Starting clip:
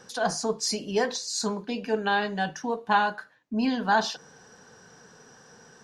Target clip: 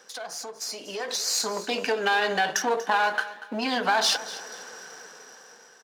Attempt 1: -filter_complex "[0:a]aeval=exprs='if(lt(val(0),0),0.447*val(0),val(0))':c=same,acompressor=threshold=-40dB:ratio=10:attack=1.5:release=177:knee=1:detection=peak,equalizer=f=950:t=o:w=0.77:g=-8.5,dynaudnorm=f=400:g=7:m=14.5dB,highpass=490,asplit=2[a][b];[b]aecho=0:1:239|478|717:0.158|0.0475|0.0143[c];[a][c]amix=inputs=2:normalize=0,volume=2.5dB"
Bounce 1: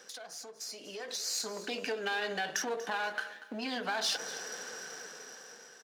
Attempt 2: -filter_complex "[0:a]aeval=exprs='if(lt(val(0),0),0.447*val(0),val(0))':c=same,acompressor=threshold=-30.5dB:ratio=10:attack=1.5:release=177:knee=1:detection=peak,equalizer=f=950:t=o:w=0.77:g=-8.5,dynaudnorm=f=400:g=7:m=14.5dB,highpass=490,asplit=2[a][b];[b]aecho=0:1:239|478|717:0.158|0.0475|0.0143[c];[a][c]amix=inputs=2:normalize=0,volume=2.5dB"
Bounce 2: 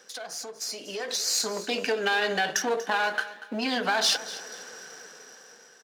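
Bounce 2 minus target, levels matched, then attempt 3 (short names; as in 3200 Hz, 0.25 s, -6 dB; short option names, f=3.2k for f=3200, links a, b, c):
1000 Hz band -3.0 dB
-filter_complex "[0:a]aeval=exprs='if(lt(val(0),0),0.447*val(0),val(0))':c=same,acompressor=threshold=-30.5dB:ratio=10:attack=1.5:release=177:knee=1:detection=peak,equalizer=f=950:t=o:w=0.77:g=-2.5,dynaudnorm=f=400:g=7:m=14.5dB,highpass=490,asplit=2[a][b];[b]aecho=0:1:239|478|717:0.158|0.0475|0.0143[c];[a][c]amix=inputs=2:normalize=0,volume=2.5dB"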